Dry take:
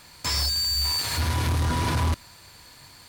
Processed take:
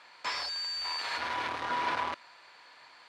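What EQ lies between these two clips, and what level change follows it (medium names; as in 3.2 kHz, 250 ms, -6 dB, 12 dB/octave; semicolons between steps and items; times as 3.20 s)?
band-pass 640–2700 Hz; 0.0 dB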